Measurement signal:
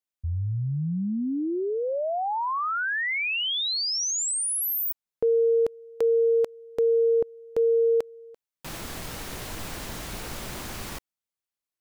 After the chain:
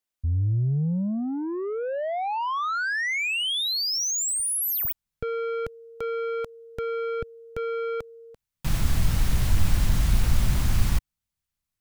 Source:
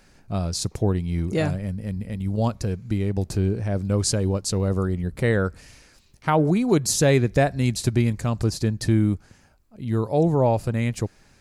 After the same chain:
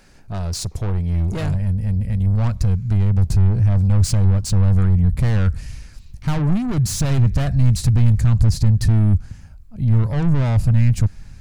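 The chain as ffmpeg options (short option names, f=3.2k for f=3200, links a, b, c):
-af "acontrast=74,asoftclip=type=tanh:threshold=-20dB,asubboost=boost=9.5:cutoff=130,volume=-3dB"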